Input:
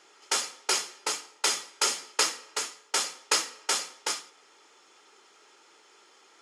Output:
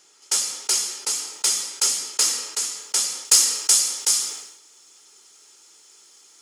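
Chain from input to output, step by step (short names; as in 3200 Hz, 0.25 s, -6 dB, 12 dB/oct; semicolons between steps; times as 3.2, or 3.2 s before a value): tone controls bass +10 dB, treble +13 dB; soft clip -2.5 dBFS, distortion -25 dB; high shelf 4700 Hz +3.5 dB, from 3.25 s +11 dB; sustainer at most 70 dB/s; gain -6 dB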